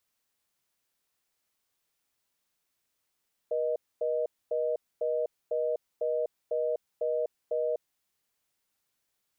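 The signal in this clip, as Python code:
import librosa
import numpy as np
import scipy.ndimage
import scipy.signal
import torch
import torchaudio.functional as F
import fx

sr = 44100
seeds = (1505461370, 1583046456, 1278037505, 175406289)

y = fx.call_progress(sr, length_s=4.39, kind='reorder tone', level_db=-29.0)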